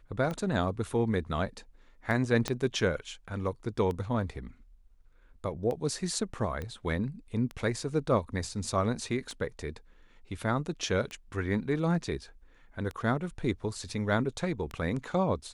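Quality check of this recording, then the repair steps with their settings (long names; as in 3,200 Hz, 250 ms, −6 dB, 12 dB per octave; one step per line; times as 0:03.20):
scratch tick 33 1/3 rpm −23 dBFS
0:02.48: click −15 dBFS
0:06.62: click −24 dBFS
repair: click removal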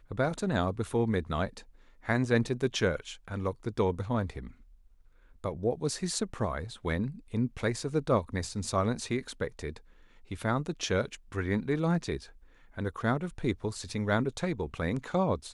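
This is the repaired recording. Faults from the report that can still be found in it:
0:02.48: click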